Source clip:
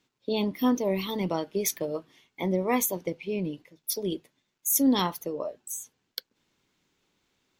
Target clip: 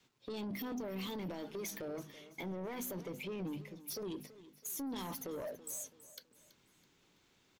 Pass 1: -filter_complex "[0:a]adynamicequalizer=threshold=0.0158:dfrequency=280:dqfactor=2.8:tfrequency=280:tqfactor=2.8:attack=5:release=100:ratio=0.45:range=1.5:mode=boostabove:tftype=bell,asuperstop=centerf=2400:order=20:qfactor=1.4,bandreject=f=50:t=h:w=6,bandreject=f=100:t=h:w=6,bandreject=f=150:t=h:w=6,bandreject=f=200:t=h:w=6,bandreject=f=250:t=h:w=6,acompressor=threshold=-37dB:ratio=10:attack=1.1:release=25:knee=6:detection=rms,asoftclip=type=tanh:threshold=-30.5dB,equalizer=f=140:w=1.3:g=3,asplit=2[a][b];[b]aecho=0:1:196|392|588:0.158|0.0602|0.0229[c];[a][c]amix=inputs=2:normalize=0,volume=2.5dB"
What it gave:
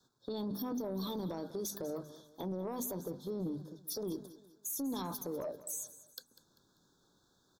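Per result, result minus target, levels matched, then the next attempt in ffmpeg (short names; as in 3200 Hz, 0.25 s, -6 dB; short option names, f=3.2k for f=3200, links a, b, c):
2000 Hz band -13.0 dB; soft clip: distortion -14 dB; echo 0.133 s early
-filter_complex "[0:a]adynamicequalizer=threshold=0.0158:dfrequency=280:dqfactor=2.8:tfrequency=280:tqfactor=2.8:attack=5:release=100:ratio=0.45:range=1.5:mode=boostabove:tftype=bell,bandreject=f=50:t=h:w=6,bandreject=f=100:t=h:w=6,bandreject=f=150:t=h:w=6,bandreject=f=200:t=h:w=6,bandreject=f=250:t=h:w=6,acompressor=threshold=-37dB:ratio=10:attack=1.1:release=25:knee=6:detection=rms,asoftclip=type=tanh:threshold=-30.5dB,equalizer=f=140:w=1.3:g=3,asplit=2[a][b];[b]aecho=0:1:196|392|588:0.158|0.0602|0.0229[c];[a][c]amix=inputs=2:normalize=0,volume=2.5dB"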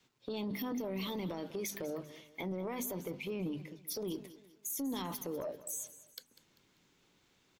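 soft clip: distortion -14 dB; echo 0.133 s early
-filter_complex "[0:a]adynamicequalizer=threshold=0.0158:dfrequency=280:dqfactor=2.8:tfrequency=280:tqfactor=2.8:attack=5:release=100:ratio=0.45:range=1.5:mode=boostabove:tftype=bell,bandreject=f=50:t=h:w=6,bandreject=f=100:t=h:w=6,bandreject=f=150:t=h:w=6,bandreject=f=200:t=h:w=6,bandreject=f=250:t=h:w=6,acompressor=threshold=-37dB:ratio=10:attack=1.1:release=25:knee=6:detection=rms,asoftclip=type=tanh:threshold=-40dB,equalizer=f=140:w=1.3:g=3,asplit=2[a][b];[b]aecho=0:1:196|392|588:0.158|0.0602|0.0229[c];[a][c]amix=inputs=2:normalize=0,volume=2.5dB"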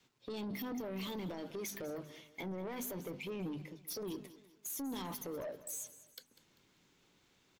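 echo 0.133 s early
-filter_complex "[0:a]adynamicequalizer=threshold=0.0158:dfrequency=280:dqfactor=2.8:tfrequency=280:tqfactor=2.8:attack=5:release=100:ratio=0.45:range=1.5:mode=boostabove:tftype=bell,bandreject=f=50:t=h:w=6,bandreject=f=100:t=h:w=6,bandreject=f=150:t=h:w=6,bandreject=f=200:t=h:w=6,bandreject=f=250:t=h:w=6,acompressor=threshold=-37dB:ratio=10:attack=1.1:release=25:knee=6:detection=rms,asoftclip=type=tanh:threshold=-40dB,equalizer=f=140:w=1.3:g=3,asplit=2[a][b];[b]aecho=0:1:329|658|987:0.158|0.0602|0.0229[c];[a][c]amix=inputs=2:normalize=0,volume=2.5dB"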